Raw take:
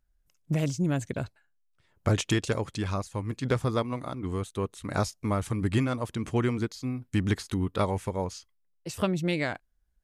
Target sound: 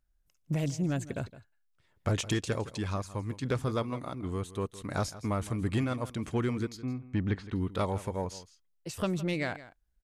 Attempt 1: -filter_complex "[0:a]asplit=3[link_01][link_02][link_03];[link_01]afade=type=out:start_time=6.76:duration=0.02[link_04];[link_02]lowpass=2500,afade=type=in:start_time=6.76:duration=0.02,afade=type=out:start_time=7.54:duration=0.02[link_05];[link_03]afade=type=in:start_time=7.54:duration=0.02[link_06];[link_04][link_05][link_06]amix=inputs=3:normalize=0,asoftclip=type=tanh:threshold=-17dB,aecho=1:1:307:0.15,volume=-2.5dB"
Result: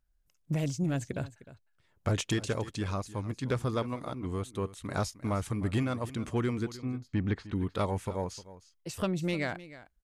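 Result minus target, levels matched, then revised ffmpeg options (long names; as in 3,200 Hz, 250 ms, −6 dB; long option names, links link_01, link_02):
echo 143 ms late
-filter_complex "[0:a]asplit=3[link_01][link_02][link_03];[link_01]afade=type=out:start_time=6.76:duration=0.02[link_04];[link_02]lowpass=2500,afade=type=in:start_time=6.76:duration=0.02,afade=type=out:start_time=7.54:duration=0.02[link_05];[link_03]afade=type=in:start_time=7.54:duration=0.02[link_06];[link_04][link_05][link_06]amix=inputs=3:normalize=0,asoftclip=type=tanh:threshold=-17dB,aecho=1:1:164:0.15,volume=-2.5dB"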